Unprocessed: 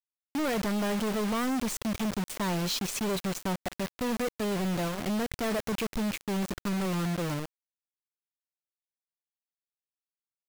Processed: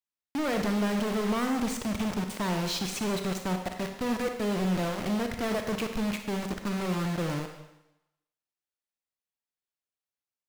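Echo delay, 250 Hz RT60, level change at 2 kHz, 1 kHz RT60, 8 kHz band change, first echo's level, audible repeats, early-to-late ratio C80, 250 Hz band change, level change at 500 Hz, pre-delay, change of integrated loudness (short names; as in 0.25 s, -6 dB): none, 0.85 s, +1.0 dB, 0.95 s, -2.0 dB, none, none, 8.5 dB, +1.0 dB, +1.0 dB, 30 ms, +0.5 dB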